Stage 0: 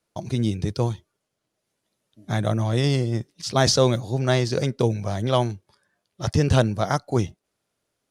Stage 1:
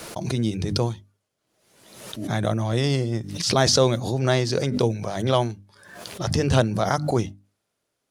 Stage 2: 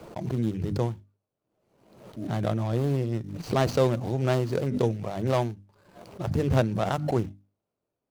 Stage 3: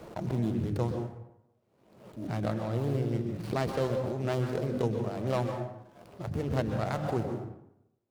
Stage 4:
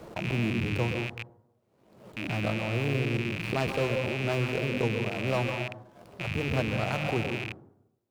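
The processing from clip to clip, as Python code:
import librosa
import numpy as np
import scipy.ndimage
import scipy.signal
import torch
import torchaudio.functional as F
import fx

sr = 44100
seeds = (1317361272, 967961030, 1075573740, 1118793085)

y1 = fx.low_shelf(x, sr, hz=79.0, db=-5.5)
y1 = fx.hum_notches(y1, sr, base_hz=50, count=6)
y1 = fx.pre_swell(y1, sr, db_per_s=59.0)
y2 = scipy.signal.medfilt(y1, 25)
y2 = y2 * 10.0 ** (-3.0 / 20.0)
y3 = fx.rider(y2, sr, range_db=10, speed_s=0.5)
y3 = fx.rev_plate(y3, sr, seeds[0], rt60_s=0.81, hf_ratio=0.55, predelay_ms=115, drr_db=4.5)
y3 = fx.running_max(y3, sr, window=5)
y3 = y3 * 10.0 ** (-5.0 / 20.0)
y4 = fx.rattle_buzz(y3, sr, strikes_db=-42.0, level_db=-24.0)
y4 = y4 * 10.0 ** (1.0 / 20.0)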